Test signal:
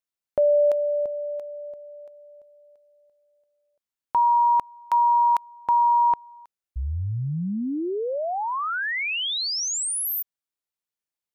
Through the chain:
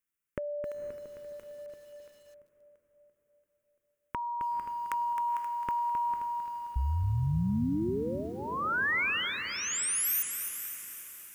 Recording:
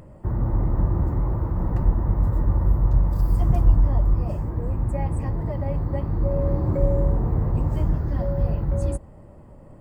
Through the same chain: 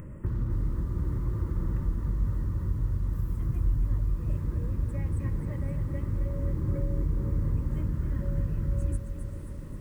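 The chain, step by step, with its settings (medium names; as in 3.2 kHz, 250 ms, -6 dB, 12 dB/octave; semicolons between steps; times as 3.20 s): compression 3:1, threshold -34 dBFS; static phaser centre 1.8 kHz, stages 4; echo that smears into a reverb 501 ms, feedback 47%, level -11.5 dB; bit-crushed delay 264 ms, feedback 55%, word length 10-bit, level -8 dB; trim +4.5 dB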